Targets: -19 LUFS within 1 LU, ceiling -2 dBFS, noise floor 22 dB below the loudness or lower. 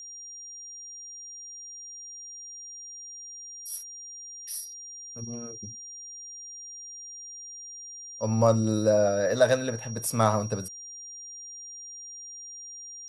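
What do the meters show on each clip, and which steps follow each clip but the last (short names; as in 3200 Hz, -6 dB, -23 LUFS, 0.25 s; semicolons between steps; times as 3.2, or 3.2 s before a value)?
steady tone 5700 Hz; tone level -40 dBFS; loudness -31.0 LUFS; peak -8.0 dBFS; loudness target -19.0 LUFS
-> notch 5700 Hz, Q 30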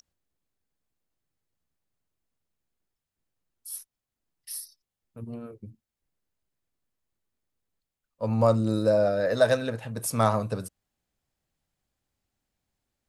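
steady tone none; loudness -25.5 LUFS; peak -7.5 dBFS; loudness target -19.0 LUFS
-> gain +6.5 dB; limiter -2 dBFS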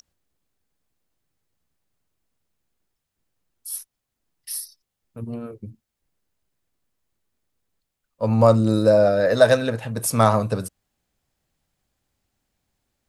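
loudness -19.5 LUFS; peak -2.0 dBFS; noise floor -82 dBFS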